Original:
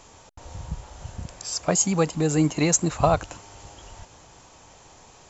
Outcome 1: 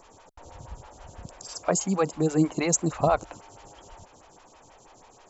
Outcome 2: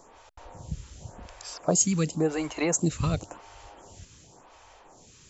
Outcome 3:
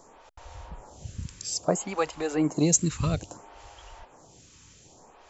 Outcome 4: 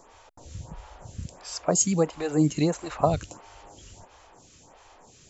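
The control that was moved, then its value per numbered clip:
lamp-driven phase shifter, rate: 6.2 Hz, 0.92 Hz, 0.6 Hz, 1.5 Hz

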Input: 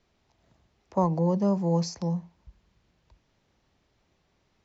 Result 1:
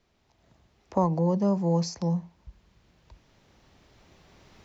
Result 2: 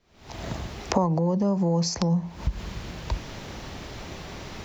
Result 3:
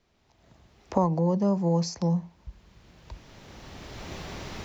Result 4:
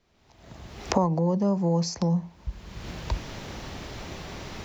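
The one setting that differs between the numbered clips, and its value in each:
recorder AGC, rising by: 5.5 dB/s, 91 dB/s, 14 dB/s, 36 dB/s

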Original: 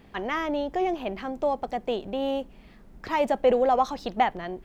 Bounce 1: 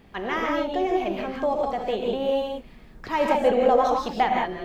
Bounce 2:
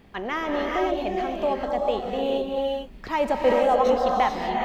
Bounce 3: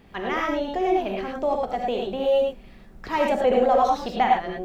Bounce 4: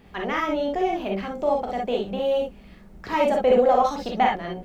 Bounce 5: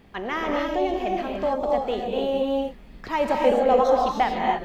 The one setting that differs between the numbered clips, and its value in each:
gated-style reverb, gate: 200 ms, 470 ms, 130 ms, 80 ms, 320 ms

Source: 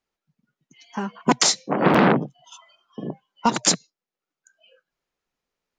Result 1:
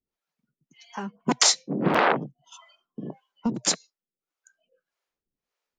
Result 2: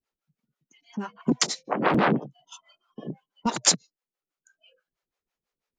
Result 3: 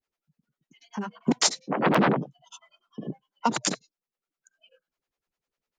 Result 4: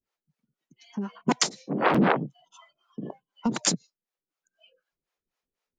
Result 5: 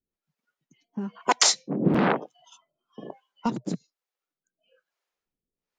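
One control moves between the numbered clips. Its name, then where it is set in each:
harmonic tremolo, rate: 1.7 Hz, 6.1 Hz, 10 Hz, 4 Hz, 1.1 Hz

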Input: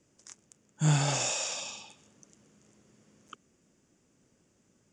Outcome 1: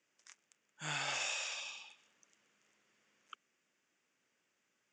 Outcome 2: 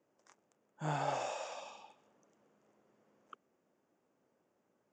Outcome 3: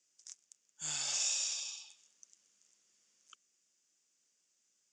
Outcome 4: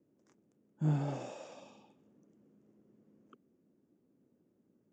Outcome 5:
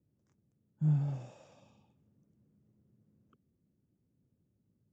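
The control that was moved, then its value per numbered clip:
band-pass filter, frequency: 2.2 kHz, 770 Hz, 5.6 kHz, 290 Hz, 100 Hz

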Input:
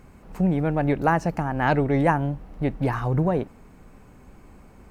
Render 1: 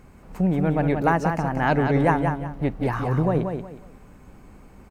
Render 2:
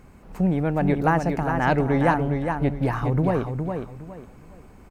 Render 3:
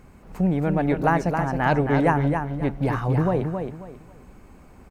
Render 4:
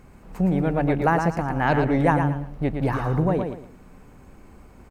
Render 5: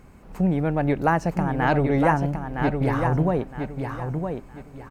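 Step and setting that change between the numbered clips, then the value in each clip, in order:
feedback delay, time: 181 ms, 412 ms, 270 ms, 114 ms, 963 ms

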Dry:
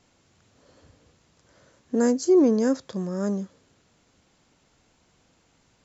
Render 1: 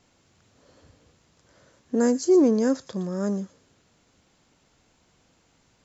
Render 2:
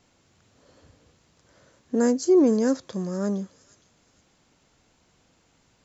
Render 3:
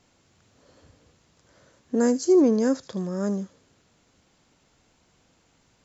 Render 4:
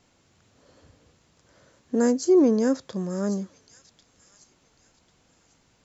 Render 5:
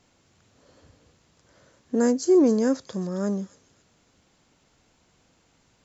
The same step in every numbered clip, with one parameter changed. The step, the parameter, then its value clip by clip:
feedback echo behind a high-pass, time: 116 ms, 464 ms, 78 ms, 1095 ms, 269 ms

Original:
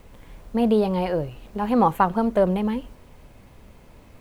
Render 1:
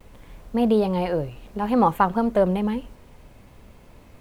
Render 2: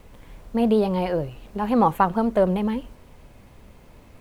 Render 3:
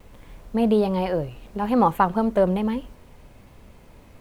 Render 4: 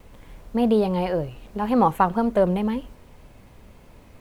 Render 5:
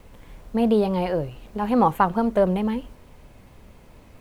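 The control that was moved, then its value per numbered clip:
vibrato, rate: 0.61 Hz, 9.4 Hz, 1.2 Hz, 1.9 Hz, 4.6 Hz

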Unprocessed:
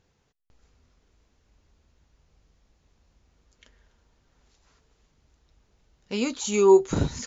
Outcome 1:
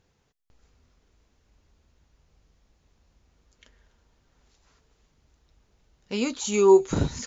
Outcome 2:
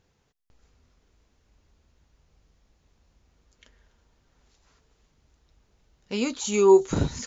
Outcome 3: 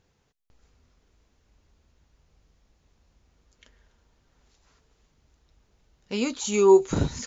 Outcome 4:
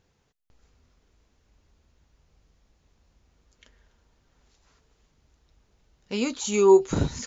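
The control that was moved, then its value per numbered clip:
feedback echo behind a high-pass, time: 240 ms, 369 ms, 141 ms, 688 ms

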